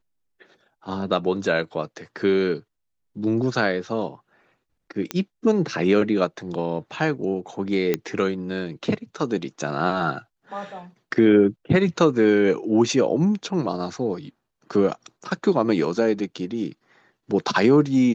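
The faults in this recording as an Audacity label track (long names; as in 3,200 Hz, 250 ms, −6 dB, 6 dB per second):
5.110000	5.110000	click −10 dBFS
7.940000	7.940000	click −8 dBFS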